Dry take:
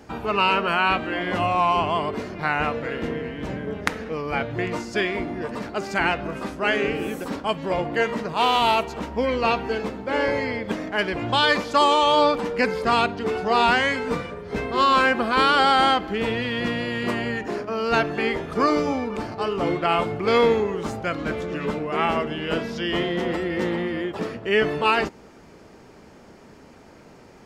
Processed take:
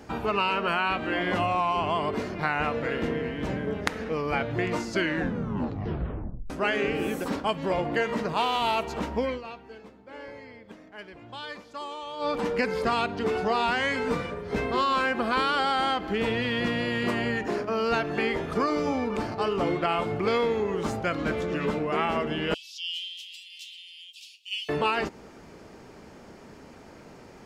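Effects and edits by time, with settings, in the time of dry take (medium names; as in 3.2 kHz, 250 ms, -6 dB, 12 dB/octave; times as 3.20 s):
4.86 s: tape stop 1.64 s
9.16–12.46 s: dip -19.5 dB, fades 0.27 s
22.54–24.69 s: steep high-pass 2.7 kHz 72 dB/octave
whole clip: compression, threshold -22 dBFS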